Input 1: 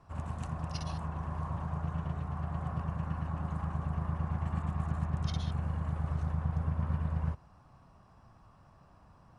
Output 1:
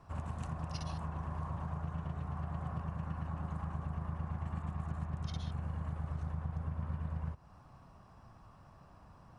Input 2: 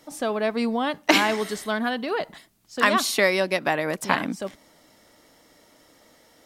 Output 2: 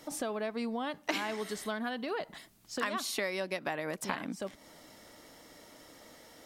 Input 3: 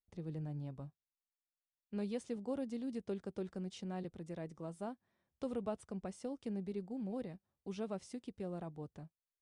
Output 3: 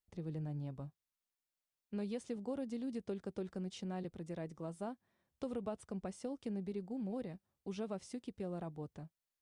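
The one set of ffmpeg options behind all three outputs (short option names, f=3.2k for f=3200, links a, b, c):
-af "acompressor=threshold=-38dB:ratio=3,volume=1.5dB"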